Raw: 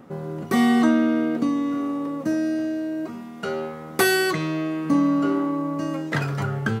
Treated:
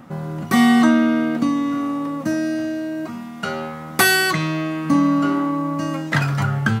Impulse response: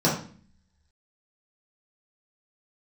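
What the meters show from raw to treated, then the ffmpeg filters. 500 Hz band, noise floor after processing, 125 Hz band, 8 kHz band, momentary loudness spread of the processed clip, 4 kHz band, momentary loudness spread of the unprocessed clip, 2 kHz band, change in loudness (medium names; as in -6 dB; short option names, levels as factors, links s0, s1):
-0.5 dB, -33 dBFS, +6.0 dB, +6.5 dB, 13 LU, +6.5 dB, 11 LU, +6.0 dB, +3.5 dB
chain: -af "equalizer=f=420:w=1.9:g=-11.5,volume=2.11"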